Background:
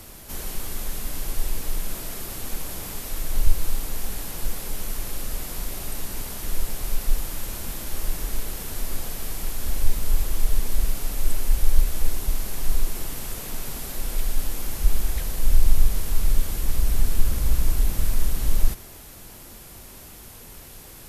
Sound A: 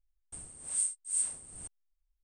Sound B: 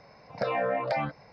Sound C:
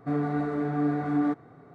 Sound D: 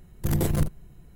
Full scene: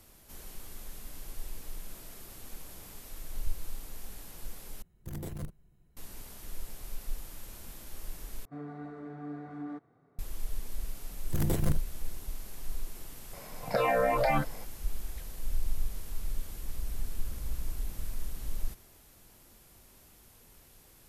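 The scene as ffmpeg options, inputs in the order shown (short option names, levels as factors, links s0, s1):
-filter_complex "[4:a]asplit=2[s0][s1];[0:a]volume=0.188[s2];[2:a]alimiter=level_in=11.9:limit=0.891:release=50:level=0:latency=1[s3];[s2]asplit=3[s4][s5][s6];[s4]atrim=end=4.824[s7];[s0]atrim=end=1.15,asetpts=PTS-STARTPTS,volume=0.168[s8];[s5]atrim=start=5.966:end=8.454[s9];[3:a]atrim=end=1.74,asetpts=PTS-STARTPTS,volume=0.178[s10];[s6]atrim=start=10.186[s11];[s1]atrim=end=1.15,asetpts=PTS-STARTPTS,volume=0.531,afade=t=in:d=0.004:c=hsin,afade=t=out:st=1.146:d=0.004:c=hsin,adelay=11090[s12];[s3]atrim=end=1.32,asetpts=PTS-STARTPTS,volume=0.133,afade=t=in:d=0.004:c=hsin,afade=t=out:st=1.316:d=0.004:c=hsin,adelay=13330[s13];[s7][s8]acrossfade=d=0.004:c1=hsin:c2=hsin[s14];[s14][s9]acrossfade=d=0.004:c1=hsin:c2=hsin[s15];[s15][s10]acrossfade=d=0.004:c1=hsin:c2=hsin[s16];[s16][s11]acrossfade=d=0.004:c1=hsin:c2=hsin[s17];[s17][s12][s13]amix=inputs=3:normalize=0"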